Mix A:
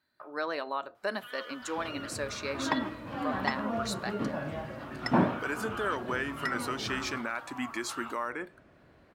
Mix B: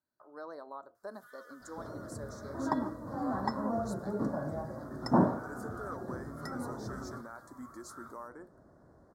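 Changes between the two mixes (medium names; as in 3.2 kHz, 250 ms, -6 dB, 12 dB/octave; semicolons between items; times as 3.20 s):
speech -10.0 dB; first sound: add high-pass 1.4 kHz 24 dB/octave; master: add Butterworth band-stop 2.7 kHz, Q 0.62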